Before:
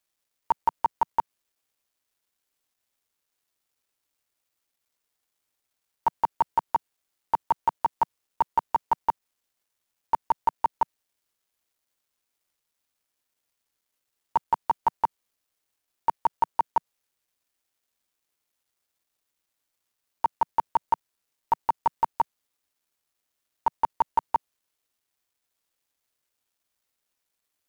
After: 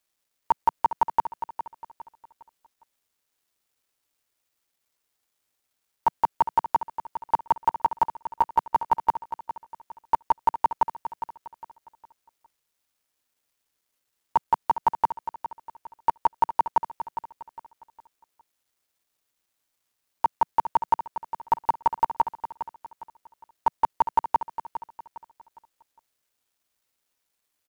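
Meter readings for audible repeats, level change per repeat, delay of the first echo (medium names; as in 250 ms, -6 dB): 3, -9.0 dB, 408 ms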